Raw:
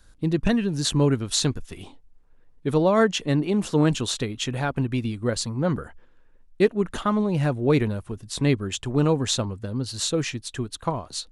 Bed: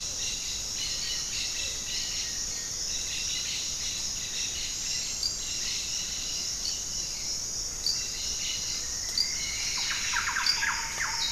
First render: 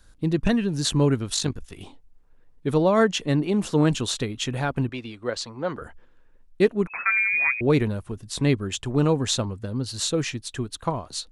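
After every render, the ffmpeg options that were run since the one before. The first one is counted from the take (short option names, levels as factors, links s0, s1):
-filter_complex "[0:a]asettb=1/sr,asplit=3[s0][s1][s2];[s0]atrim=end=1.344[s3];[s1]atrim=start=1.34:end=1.81,asetpts=PTS-STARTPTS,afade=t=in:d=0.004:c=qsin,afade=t=out:st=0.466:d=0.004:c=qsin,tremolo=f=49:d=0.621[s4];[s2]atrim=start=1.806[s5];[s3][s4]acrossfade=d=0.004:c1=hsin:c2=qsin[s6];[s6][s5]acrossfade=d=0.004:c1=qsin:c2=hsin,asettb=1/sr,asplit=3[s7][s8][s9];[s7]atrim=end=4.894[s10];[s8]atrim=start=4.89:end=5.82,asetpts=PTS-STARTPTS,afade=t=in:d=0.004:c=qsin,afade=t=out:st=0.926:d=0.004:c=qsin,acrossover=split=350 6200:gain=0.2 1 0.158[s11][s12][s13];[s11][s12][s13]amix=inputs=3:normalize=0[s14];[s9]atrim=start=5.816[s15];[s10][s14]acrossfade=d=0.004:c1=hsin:c2=qsin[s16];[s16][s15]acrossfade=d=0.004:c1=qsin:c2=hsin,asettb=1/sr,asplit=3[s17][s18][s19];[s17]atrim=end=6.874[s20];[s18]atrim=start=6.87:end=7.61,asetpts=PTS-STARTPTS,afade=t=in:d=0.004:c=qsin,afade=t=out:st=0.736:d=0.004:c=qsin,lowpass=f=2200:t=q:w=0.5098,lowpass=f=2200:t=q:w=0.6013,lowpass=f=2200:t=q:w=0.9,lowpass=f=2200:t=q:w=2.563,afreqshift=-2600[s21];[s19]atrim=start=7.606[s22];[s20][s21]acrossfade=d=0.004:c1=hsin:c2=qsin[s23];[s23][s22]acrossfade=d=0.004:c1=qsin:c2=hsin"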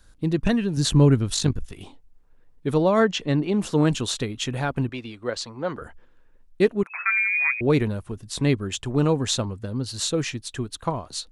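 -filter_complex "[0:a]asettb=1/sr,asplit=3[s0][s1][s2];[s0]atrim=end=0.774[s3];[s1]atrim=start=0.77:end=1.72,asetpts=PTS-STARTPTS,afade=t=in:d=0.004:c=qsin,afade=t=out:st=0.946:d=0.004:c=qsin,lowshelf=f=220:g=8.5[s4];[s2]atrim=start=1.716[s5];[s3][s4]acrossfade=d=0.004:c1=hsin:c2=qsin[s6];[s6][s5]acrossfade=d=0.004:c1=qsin:c2=hsin,asettb=1/sr,asplit=3[s7][s8][s9];[s7]atrim=end=3.004[s10];[s8]atrim=start=3:end=3.6,asetpts=PTS-STARTPTS,afade=t=in:d=0.004:c=qsin,afade=t=out:st=0.596:d=0.004:c=qsin,lowpass=6000[s11];[s9]atrim=start=3.596[s12];[s10][s11]acrossfade=d=0.004:c1=hsin:c2=qsin[s13];[s13][s12]acrossfade=d=0.004:c1=qsin:c2=hsin,asettb=1/sr,asplit=3[s14][s15][s16];[s14]atrim=end=6.834[s17];[s15]atrim=start=6.83:end=7.5,asetpts=PTS-STARTPTS,afade=t=in:d=0.004:c=qsin,afade=t=out:st=0.666:d=0.004:c=qsin,highpass=960[s18];[s16]atrim=start=7.496[s19];[s17][s18]acrossfade=d=0.004:c1=hsin:c2=qsin[s20];[s20][s19]acrossfade=d=0.004:c1=qsin:c2=hsin"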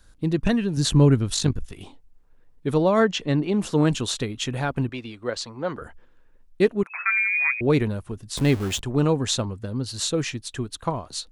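-filter_complex "[0:a]asettb=1/sr,asplit=3[s0][s1][s2];[s0]atrim=end=8.374[s3];[s1]atrim=start=8.37:end=8.81,asetpts=PTS-STARTPTS,afade=t=in:d=0.004:c=qsin,afade=t=out:st=0.436:d=0.004:c=qsin,aeval=exprs='val(0)+0.5*0.0376*sgn(val(0))':c=same[s4];[s2]atrim=start=8.806[s5];[s3][s4]acrossfade=d=0.004:c1=hsin:c2=qsin[s6];[s6][s5]acrossfade=d=0.004:c1=qsin:c2=hsin"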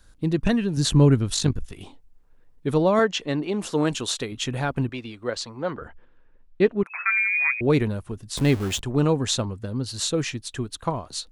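-filter_complex "[0:a]asettb=1/sr,asplit=3[s0][s1][s2];[s0]atrim=end=2.994[s3];[s1]atrim=start=2.99:end=4.32,asetpts=PTS-STARTPTS,afade=t=in:d=0.004:c=qsin,afade=t=out:st=1.326:d=0.004:c=qsin,bass=f=250:g=-8,treble=f=4000:g=1[s4];[s2]atrim=start=4.316[s5];[s3][s4]acrossfade=d=0.004:c1=hsin:c2=qsin[s6];[s6][s5]acrossfade=d=0.004:c1=qsin:c2=hsin,asettb=1/sr,asplit=3[s7][s8][s9];[s7]atrim=end=5.704[s10];[s8]atrim=start=5.7:end=6.86,asetpts=PTS-STARTPTS,afade=t=in:d=0.004:c=qsin,afade=t=out:st=1.156:d=0.004:c=qsin,lowpass=3600[s11];[s9]atrim=start=6.856[s12];[s10][s11]acrossfade=d=0.004:c1=hsin:c2=qsin[s13];[s13][s12]acrossfade=d=0.004:c1=qsin:c2=hsin"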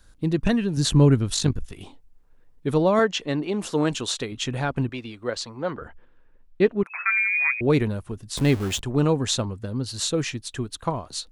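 -filter_complex "[0:a]asettb=1/sr,asplit=3[s0][s1][s2];[s0]atrim=end=3.794[s3];[s1]atrim=start=3.79:end=4.9,asetpts=PTS-STARTPTS,afade=t=in:d=0.004:c=qsin,afade=t=out:st=1.106:d=0.004:c=qsin,lowpass=9800[s4];[s2]atrim=start=4.896[s5];[s3][s4]acrossfade=d=0.004:c1=hsin:c2=qsin[s6];[s6][s5]acrossfade=d=0.004:c1=qsin:c2=hsin"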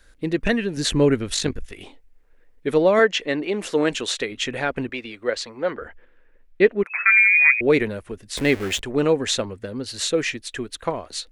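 -af "equalizer=f=125:t=o:w=1:g=-10,equalizer=f=500:t=o:w=1:g=6,equalizer=f=1000:t=o:w=1:g=-4,equalizer=f=2000:t=o:w=1:g=10"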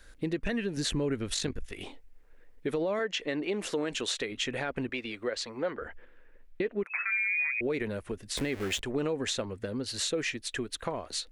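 -af "alimiter=limit=0.2:level=0:latency=1:release=60,acompressor=threshold=0.02:ratio=2"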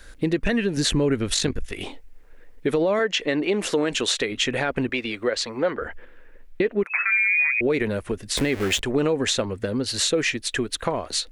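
-af "volume=2.82"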